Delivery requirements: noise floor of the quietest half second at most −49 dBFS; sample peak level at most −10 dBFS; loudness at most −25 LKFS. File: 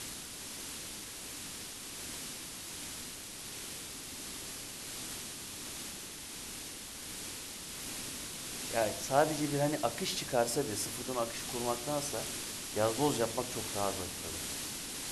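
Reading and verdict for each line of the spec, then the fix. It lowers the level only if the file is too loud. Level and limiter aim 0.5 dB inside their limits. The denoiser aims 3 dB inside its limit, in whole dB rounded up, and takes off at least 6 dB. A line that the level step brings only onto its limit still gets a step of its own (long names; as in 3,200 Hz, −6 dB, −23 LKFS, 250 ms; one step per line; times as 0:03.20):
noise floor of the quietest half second −45 dBFS: out of spec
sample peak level −13.0 dBFS: in spec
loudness −36.5 LKFS: in spec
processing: broadband denoise 7 dB, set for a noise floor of −45 dBFS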